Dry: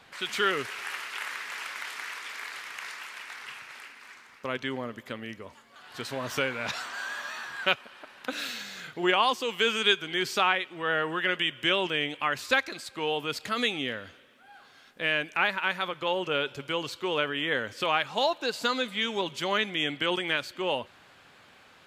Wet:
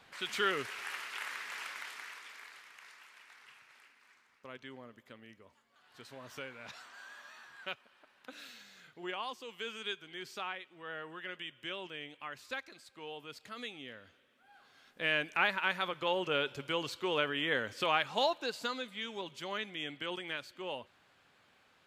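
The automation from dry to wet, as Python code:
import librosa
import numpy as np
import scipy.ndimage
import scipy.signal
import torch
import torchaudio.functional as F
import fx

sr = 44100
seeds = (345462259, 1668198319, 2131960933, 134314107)

y = fx.gain(x, sr, db=fx.line((1.66, -5.5), (2.74, -16.0), (13.82, -16.0), (15.14, -4.0), (18.22, -4.0), (18.86, -11.5)))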